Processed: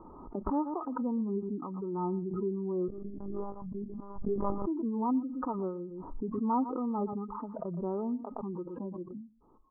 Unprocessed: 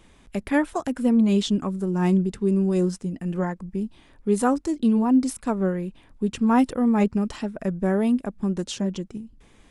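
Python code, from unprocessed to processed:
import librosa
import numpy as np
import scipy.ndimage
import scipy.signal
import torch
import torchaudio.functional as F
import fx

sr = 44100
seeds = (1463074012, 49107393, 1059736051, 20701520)

p1 = fx.recorder_agc(x, sr, target_db=-17.0, rise_db_per_s=18.0, max_gain_db=30)
p2 = fx.noise_reduce_blind(p1, sr, reduce_db=23)
p3 = scipy.signal.sosfilt(scipy.signal.cheby1(6, 9, 1300.0, 'lowpass', fs=sr, output='sos'), p2)
p4 = fx.low_shelf(p3, sr, hz=490.0, db=-10.5)
p5 = p4 + fx.echo_single(p4, sr, ms=118, db=-21.0, dry=0)
p6 = fx.lpc_monotone(p5, sr, seeds[0], pitch_hz=200.0, order=8, at=(2.88, 4.67))
p7 = fx.pre_swell(p6, sr, db_per_s=32.0)
y = p7 * librosa.db_to_amplitude(-1.0)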